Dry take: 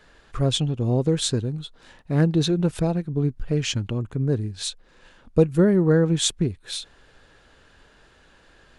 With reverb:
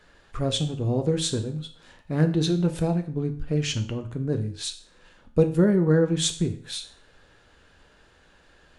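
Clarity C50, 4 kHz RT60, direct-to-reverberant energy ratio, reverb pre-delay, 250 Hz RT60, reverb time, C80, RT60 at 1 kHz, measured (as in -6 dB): 12.5 dB, 0.45 s, 6.5 dB, 8 ms, 0.45 s, 0.45 s, 16.5 dB, 0.45 s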